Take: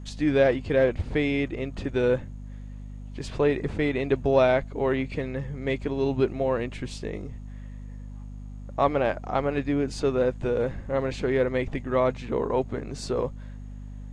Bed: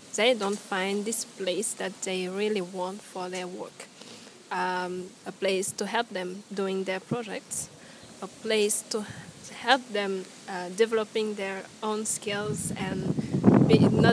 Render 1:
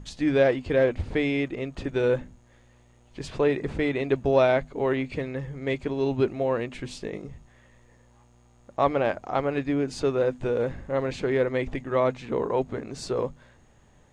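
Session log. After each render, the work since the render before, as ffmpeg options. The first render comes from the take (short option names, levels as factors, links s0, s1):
-af "bandreject=f=50:t=h:w=6,bandreject=f=100:t=h:w=6,bandreject=f=150:t=h:w=6,bandreject=f=200:t=h:w=6,bandreject=f=250:t=h:w=6"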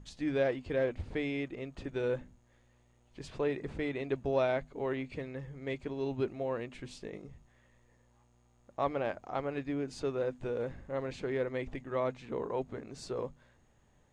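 -af "volume=0.335"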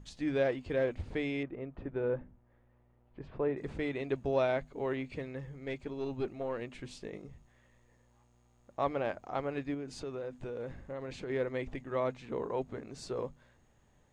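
-filter_complex "[0:a]asettb=1/sr,asplit=3[s0][s1][s2];[s0]atrim=end=1.434[s3];[s1]atrim=start=1.43:end=3.57,asetpts=PTS-STARTPTS,afade=t=in:d=0.004:c=qsin,afade=t=out:st=2.136:d=0.004:c=qsin,lowpass=1500[s4];[s2]atrim=start=3.566[s5];[s3][s4]acrossfade=d=0.004:c1=hsin:c2=qsin[s6];[s6][s5]acrossfade=d=0.004:c1=qsin:c2=hsin,asettb=1/sr,asplit=3[s7][s8][s9];[s7]atrim=end=5.564[s10];[s8]atrim=start=5.56:end=6.62,asetpts=PTS-STARTPTS,afade=t=in:d=0.004:c=qsin,afade=t=out:st=1.056:d=0.004:c=qsin,aeval=exprs='(tanh(17.8*val(0)+0.4)-tanh(0.4))/17.8':c=same[s11];[s9]atrim=start=6.616[s12];[s10][s11]acrossfade=d=0.004:c1=hsin:c2=qsin[s13];[s13][s12]acrossfade=d=0.004:c1=qsin:c2=hsin,asettb=1/sr,asplit=3[s14][s15][s16];[s14]atrim=end=9.744[s17];[s15]atrim=start=9.74:end=11.3,asetpts=PTS-STARTPTS,afade=t=in:d=0.004:c=qsin,afade=t=out:st=1.556:d=0.004:c=qsin,acompressor=threshold=0.0158:ratio=6:attack=3.2:release=140:knee=1:detection=peak[s18];[s16]atrim=start=11.296[s19];[s17][s18]acrossfade=d=0.004:c1=hsin:c2=qsin[s20];[s20][s19]acrossfade=d=0.004:c1=qsin:c2=hsin"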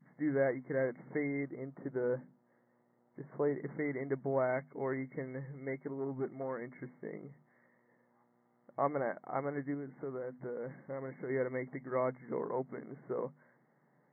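-af "adynamicequalizer=threshold=0.00708:dfrequency=500:dqfactor=0.79:tfrequency=500:tqfactor=0.79:attack=5:release=100:ratio=0.375:range=2:mode=cutabove:tftype=bell,afftfilt=real='re*between(b*sr/4096,120,2200)':imag='im*between(b*sr/4096,120,2200)':win_size=4096:overlap=0.75"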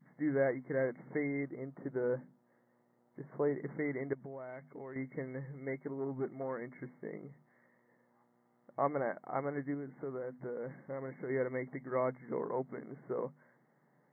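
-filter_complex "[0:a]asettb=1/sr,asplit=3[s0][s1][s2];[s0]atrim=end=4.134[s3];[s1]atrim=start=4.13:end=4.96,asetpts=PTS-STARTPTS,afade=t=in:d=0.004:c=qsin,afade=t=out:st=0.826:d=0.004:c=qsin,acompressor=threshold=0.00708:ratio=6:attack=3.2:release=140:knee=1:detection=peak[s4];[s2]atrim=start=4.956[s5];[s3][s4]acrossfade=d=0.004:c1=hsin:c2=qsin[s6];[s6][s5]acrossfade=d=0.004:c1=qsin:c2=hsin"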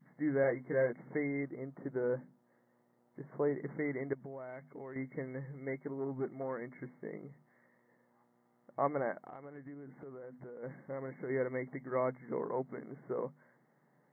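-filter_complex "[0:a]asettb=1/sr,asplit=3[s0][s1][s2];[s0]atrim=end=0.424[s3];[s1]atrim=start=0.42:end=0.93,asetpts=PTS-STARTPTS,afade=t=in:d=0.004:c=qsin,afade=t=out:st=0.506:d=0.004:c=qsin,asplit=2[s4][s5];[s5]adelay=17,volume=0.531[s6];[s4][s6]amix=inputs=2:normalize=0,atrim=end_sample=22491[s7];[s2]atrim=start=0.926[s8];[s3][s7]acrossfade=d=0.004:c1=hsin:c2=qsin[s9];[s9][s8]acrossfade=d=0.004:c1=qsin:c2=hsin,asplit=3[s10][s11][s12];[s10]afade=t=out:st=9.2:d=0.02[s13];[s11]acompressor=threshold=0.00631:ratio=16:attack=3.2:release=140:knee=1:detection=peak,afade=t=in:st=9.2:d=0.02,afade=t=out:st=10.62:d=0.02[s14];[s12]afade=t=in:st=10.62:d=0.02[s15];[s13][s14][s15]amix=inputs=3:normalize=0"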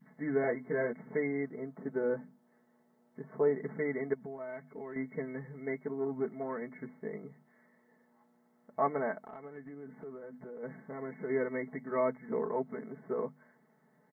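-af "aecho=1:1:4.6:0.9"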